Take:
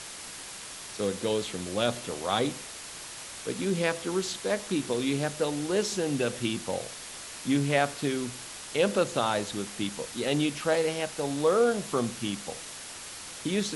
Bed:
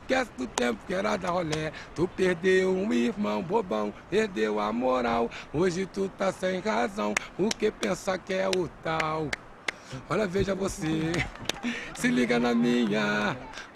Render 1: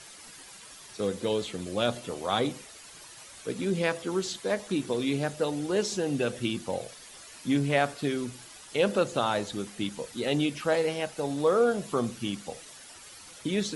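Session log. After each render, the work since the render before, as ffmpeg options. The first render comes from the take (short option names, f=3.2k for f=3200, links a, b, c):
-af "afftdn=nr=10:nf=-42"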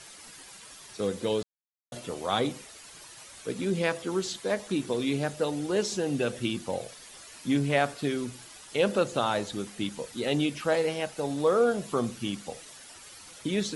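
-filter_complex "[0:a]asplit=3[a][b][c];[a]atrim=end=1.43,asetpts=PTS-STARTPTS,afade=t=out:st=1.426:d=0.004:c=hsin[d];[b]atrim=start=1.43:end=1.92,asetpts=PTS-STARTPTS,volume=0[e];[c]atrim=start=1.92,asetpts=PTS-STARTPTS,afade=t=in:d=0.004:c=hsin[f];[d][e][f]concat=n=3:v=0:a=1"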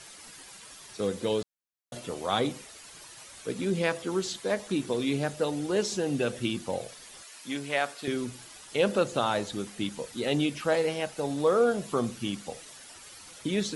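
-filter_complex "[0:a]asettb=1/sr,asplit=3[a][b][c];[a]atrim=end=7.234[d];[b]atrim=start=7.23:end=8.08,asetpts=PTS-STARTPTS,afade=t=in:d=0.004:c=qsin,afade=t=out:st=0.846:d=0.004:c=qsin,highpass=f=770:p=1[e];[c]atrim=start=8.076[f];[d][e]acrossfade=d=0.004:c1=hsin:c2=qsin[g];[g][f]acrossfade=d=0.004:c1=qsin:c2=hsin"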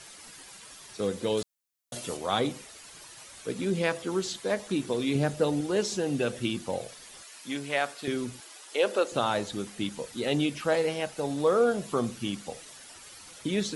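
-filter_complex "[0:a]asettb=1/sr,asplit=3[a][b][c];[a]atrim=end=1.374[d];[b]atrim=start=1.37:end=2.17,asetpts=PTS-STARTPTS,afade=t=in:d=0.004:c=qsin,afade=t=out:st=0.796:d=0.004:c=qsin,highshelf=f=3.7k:g=9[e];[c]atrim=start=2.166[f];[d][e]acrossfade=d=0.004:c1=hsin:c2=qsin[g];[g][f]acrossfade=d=0.004:c1=qsin:c2=hsin,asettb=1/sr,asplit=3[h][i][j];[h]atrim=end=5.154[k];[i]atrim=start=5.15:end=5.61,asetpts=PTS-STARTPTS,afade=t=in:d=0.004:c=qsin,afade=t=out:st=0.456:d=0.004:c=qsin,lowshelf=f=430:g=6[l];[j]atrim=start=5.606[m];[k][l]acrossfade=d=0.004:c1=hsin:c2=qsin[n];[n][m]acrossfade=d=0.004:c1=qsin:c2=hsin,asettb=1/sr,asplit=3[o][p][q];[o]atrim=end=8.404[r];[p]atrim=start=8.4:end=9.12,asetpts=PTS-STARTPTS,afade=t=in:d=0.004:c=qsin,afade=t=out:st=0.716:d=0.004:c=qsin,highpass=f=320:w=0.5412,highpass=f=320:w=1.3066[s];[q]atrim=start=9.116[t];[r][s]acrossfade=d=0.004:c1=hsin:c2=qsin[u];[u][t]acrossfade=d=0.004:c1=qsin:c2=hsin"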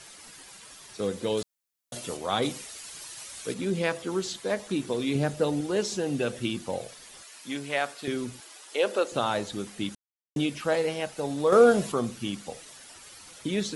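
-filter_complex "[0:a]asettb=1/sr,asplit=3[a][b][c];[a]atrim=end=2.424[d];[b]atrim=start=2.42:end=3.54,asetpts=PTS-STARTPTS,afade=t=in:d=0.004:c=qsin,afade=t=out:st=1.116:d=0.004:c=qsin,highshelf=f=2.5k:g=7.5[e];[c]atrim=start=3.536[f];[d][e]acrossfade=d=0.004:c1=hsin:c2=qsin[g];[g][f]acrossfade=d=0.004:c1=qsin:c2=hsin,asettb=1/sr,asplit=3[h][i][j];[h]atrim=end=11.524[k];[i]atrim=start=11.52:end=11.92,asetpts=PTS-STARTPTS,afade=t=in:d=0.004:c=qsin,afade=t=out:st=0.396:d=0.004:c=qsin,acontrast=69[l];[j]atrim=start=11.916[m];[k][l]acrossfade=d=0.004:c1=hsin:c2=qsin[n];[n][m]acrossfade=d=0.004:c1=qsin:c2=hsin,asplit=3[o][p][q];[o]atrim=end=9.95,asetpts=PTS-STARTPTS,afade=t=out:st=9.946:d=0.004:c=hsin[r];[p]atrim=start=9.95:end=10.36,asetpts=PTS-STARTPTS,volume=0[s];[q]atrim=start=10.36,asetpts=PTS-STARTPTS,afade=t=in:d=0.004:c=hsin[t];[r][s][t]concat=n=3:v=0:a=1"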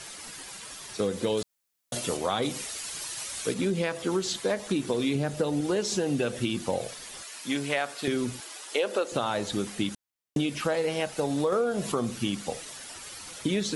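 -filter_complex "[0:a]asplit=2[a][b];[b]alimiter=limit=-19.5dB:level=0:latency=1:release=202,volume=-0.5dB[c];[a][c]amix=inputs=2:normalize=0,acompressor=threshold=-23dB:ratio=10"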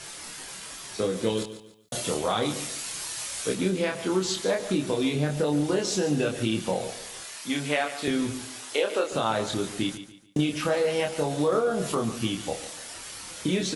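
-filter_complex "[0:a]asplit=2[a][b];[b]adelay=27,volume=-3dB[c];[a][c]amix=inputs=2:normalize=0,aecho=1:1:144|288|432:0.237|0.0783|0.0258"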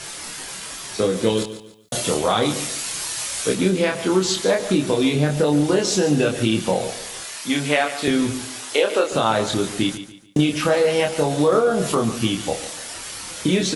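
-af "volume=7dB"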